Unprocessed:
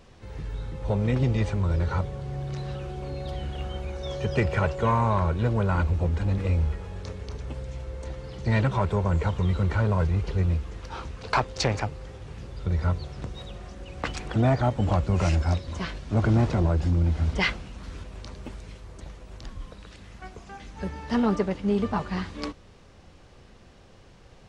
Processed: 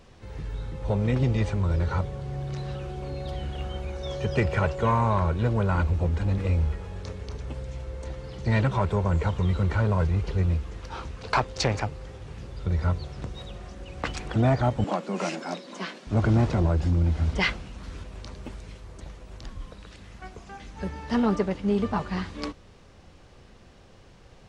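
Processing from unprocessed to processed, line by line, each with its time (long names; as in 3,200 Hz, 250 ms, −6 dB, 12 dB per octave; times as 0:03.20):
0:14.84–0:16.07: Butterworth high-pass 190 Hz 48 dB per octave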